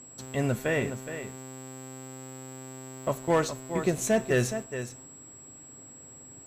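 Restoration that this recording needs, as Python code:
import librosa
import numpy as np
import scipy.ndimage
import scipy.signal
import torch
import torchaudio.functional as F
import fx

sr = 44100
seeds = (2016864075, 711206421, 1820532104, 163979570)

y = fx.fix_declip(x, sr, threshold_db=-16.5)
y = fx.notch(y, sr, hz=7700.0, q=30.0)
y = fx.fix_echo_inverse(y, sr, delay_ms=418, level_db=-10.5)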